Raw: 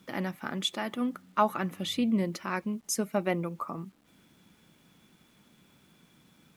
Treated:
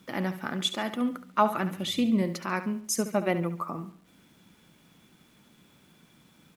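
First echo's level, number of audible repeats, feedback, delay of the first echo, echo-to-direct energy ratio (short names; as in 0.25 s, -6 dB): -12.0 dB, 3, 39%, 70 ms, -11.5 dB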